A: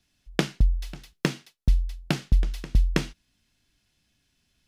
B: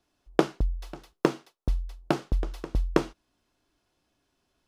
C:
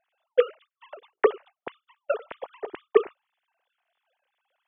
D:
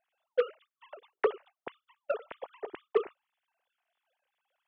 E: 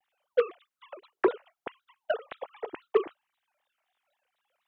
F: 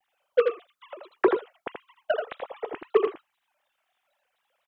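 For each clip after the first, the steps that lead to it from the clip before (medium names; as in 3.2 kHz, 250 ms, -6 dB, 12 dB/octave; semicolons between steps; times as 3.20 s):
high-order bell 630 Hz +13 dB 2.5 oct; trim -6.5 dB
formants replaced by sine waves
saturation -11 dBFS, distortion -14 dB; trim -5 dB
vibrato with a chosen wave saw down 3.9 Hz, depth 250 cents; trim +3 dB
delay 82 ms -5.5 dB; trim +3 dB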